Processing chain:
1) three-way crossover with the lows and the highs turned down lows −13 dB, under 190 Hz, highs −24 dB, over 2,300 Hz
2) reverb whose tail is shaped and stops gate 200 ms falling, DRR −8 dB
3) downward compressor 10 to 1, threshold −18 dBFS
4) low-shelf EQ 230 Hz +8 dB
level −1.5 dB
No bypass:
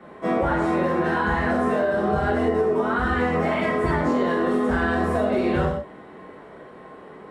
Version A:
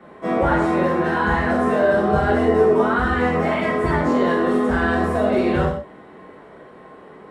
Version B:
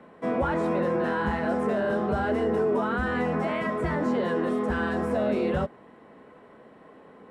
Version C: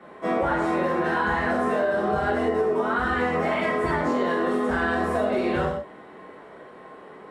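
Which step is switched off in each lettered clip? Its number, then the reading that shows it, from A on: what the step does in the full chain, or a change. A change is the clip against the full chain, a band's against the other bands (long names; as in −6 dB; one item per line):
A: 3, average gain reduction 2.5 dB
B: 2, change in momentary loudness spread +1 LU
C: 4, 125 Hz band −5.5 dB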